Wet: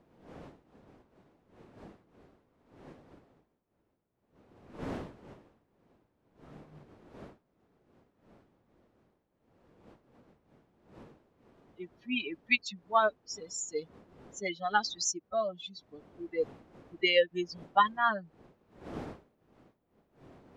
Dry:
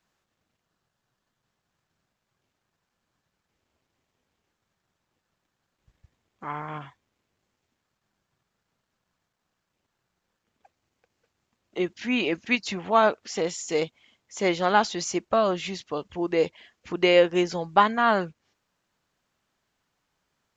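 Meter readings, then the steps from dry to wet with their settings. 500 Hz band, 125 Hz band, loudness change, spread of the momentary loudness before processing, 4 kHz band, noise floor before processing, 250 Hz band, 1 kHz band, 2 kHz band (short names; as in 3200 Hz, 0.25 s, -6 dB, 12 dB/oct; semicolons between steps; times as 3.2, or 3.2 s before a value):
-9.5 dB, -11.0 dB, -7.0 dB, 16 LU, -4.0 dB, -81 dBFS, -12.0 dB, -6.5 dB, -4.5 dB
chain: per-bin expansion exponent 3; wind noise 330 Hz -46 dBFS; tilt +2.5 dB/oct; gain -2 dB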